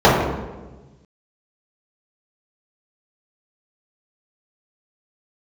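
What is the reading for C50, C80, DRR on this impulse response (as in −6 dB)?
1.5 dB, 4.0 dB, −11.0 dB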